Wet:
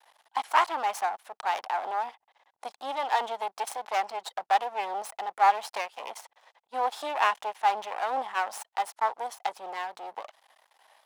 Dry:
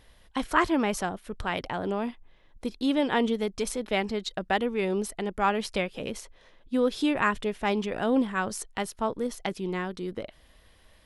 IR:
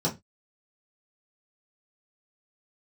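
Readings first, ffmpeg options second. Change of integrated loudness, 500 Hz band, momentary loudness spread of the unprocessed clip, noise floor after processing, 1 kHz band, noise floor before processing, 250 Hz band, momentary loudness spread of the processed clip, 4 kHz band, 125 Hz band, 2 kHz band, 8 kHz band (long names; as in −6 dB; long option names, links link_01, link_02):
−1.0 dB, −7.0 dB, 11 LU, −80 dBFS, +5.5 dB, −58 dBFS, −24.5 dB, 13 LU, −3.0 dB, below −30 dB, −2.0 dB, −4.0 dB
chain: -af "aeval=exprs='max(val(0),0)':channel_layout=same,highpass=frequency=820:width_type=q:width=4.9"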